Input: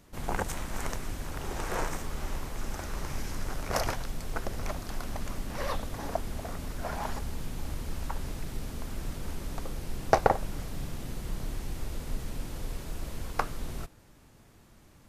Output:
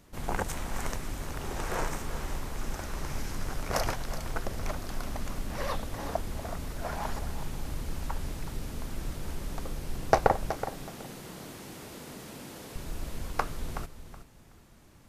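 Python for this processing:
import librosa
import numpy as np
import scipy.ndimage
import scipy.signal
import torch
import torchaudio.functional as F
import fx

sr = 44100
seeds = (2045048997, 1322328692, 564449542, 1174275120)

y = fx.highpass(x, sr, hz=190.0, slope=12, at=(10.5, 12.76))
y = fx.echo_feedback(y, sr, ms=373, feedback_pct=21, wet_db=-11.5)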